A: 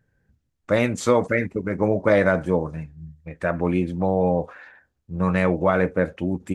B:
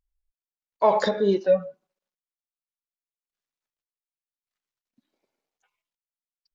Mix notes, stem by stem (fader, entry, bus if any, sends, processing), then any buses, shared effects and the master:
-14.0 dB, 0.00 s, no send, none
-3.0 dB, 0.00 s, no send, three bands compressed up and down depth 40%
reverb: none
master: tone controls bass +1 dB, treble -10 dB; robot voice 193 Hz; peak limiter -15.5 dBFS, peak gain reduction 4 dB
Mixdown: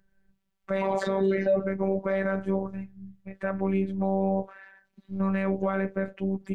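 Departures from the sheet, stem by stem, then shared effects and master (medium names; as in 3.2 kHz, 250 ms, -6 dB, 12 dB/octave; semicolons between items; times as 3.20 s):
stem A -14.0 dB -> -2.5 dB; stem B -3.0 dB -> +3.5 dB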